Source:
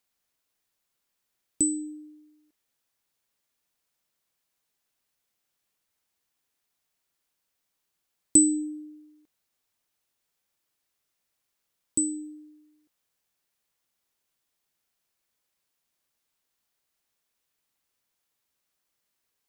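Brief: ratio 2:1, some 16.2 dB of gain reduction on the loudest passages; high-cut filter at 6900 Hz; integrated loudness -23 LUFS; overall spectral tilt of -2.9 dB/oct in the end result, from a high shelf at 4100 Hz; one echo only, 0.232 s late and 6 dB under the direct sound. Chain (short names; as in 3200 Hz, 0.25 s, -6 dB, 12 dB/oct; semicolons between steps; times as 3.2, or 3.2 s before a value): LPF 6900 Hz; high shelf 4100 Hz +5.5 dB; compressor 2:1, threshold -44 dBFS; echo 0.232 s -6 dB; gain +17 dB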